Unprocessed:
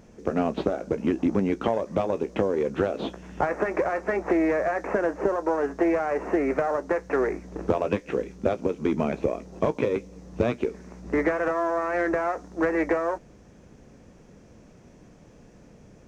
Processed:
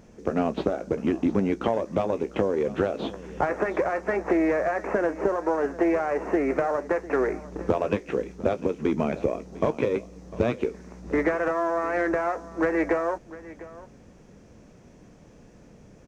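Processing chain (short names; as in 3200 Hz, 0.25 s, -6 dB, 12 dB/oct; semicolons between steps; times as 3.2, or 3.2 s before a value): echo 0.701 s -18 dB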